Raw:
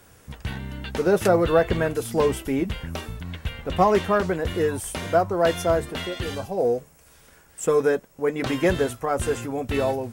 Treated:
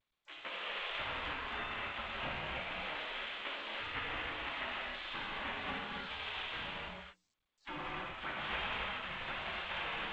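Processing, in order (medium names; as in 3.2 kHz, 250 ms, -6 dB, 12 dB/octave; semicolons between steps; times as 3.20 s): local Wiener filter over 9 samples; word length cut 6-bit, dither none; steep low-pass 3.3 kHz 48 dB/octave; hum notches 60/120/180/240/300/360/420 Hz; compression 3:1, threshold -31 dBFS, peak gain reduction 13.5 dB; flange 0.4 Hz, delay 9.6 ms, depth 9.8 ms, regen -20%; spectral gate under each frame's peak -25 dB weak; gated-style reverb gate 350 ms flat, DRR -6 dB; trim +7 dB; G.722 64 kbps 16 kHz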